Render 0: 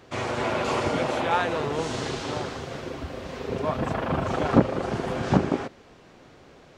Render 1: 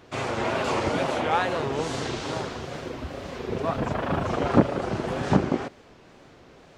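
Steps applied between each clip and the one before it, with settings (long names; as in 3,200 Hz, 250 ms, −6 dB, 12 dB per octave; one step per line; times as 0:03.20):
tape wow and flutter 120 cents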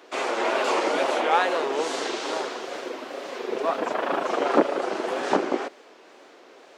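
high-pass filter 320 Hz 24 dB per octave
level +3 dB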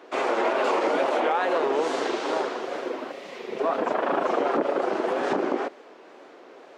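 high-shelf EQ 2,700 Hz −11 dB
gain on a spectral selection 0:03.12–0:03.59, 230–1,800 Hz −8 dB
brickwall limiter −18 dBFS, peak gain reduction 11 dB
level +3.5 dB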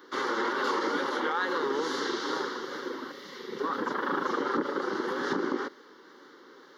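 high-shelf EQ 6,300 Hz +10 dB
phaser with its sweep stopped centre 2,500 Hz, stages 6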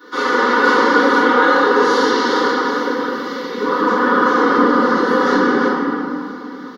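comb filter 4.1 ms, depth 80%
convolution reverb RT60 2.8 s, pre-delay 3 ms, DRR −13.5 dB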